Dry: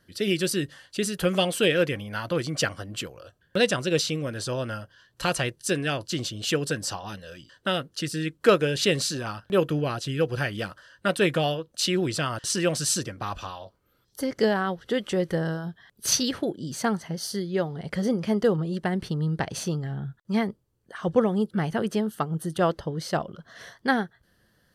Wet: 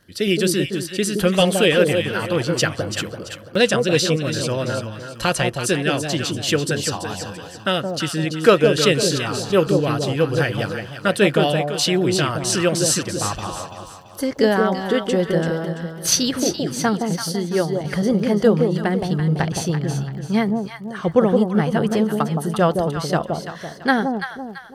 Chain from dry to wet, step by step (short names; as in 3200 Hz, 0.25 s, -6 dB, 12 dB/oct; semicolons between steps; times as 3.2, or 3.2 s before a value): echo with dull and thin repeats by turns 0.168 s, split 870 Hz, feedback 60%, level -3.5 dB; crackle 41/s -46 dBFS; gain +5.5 dB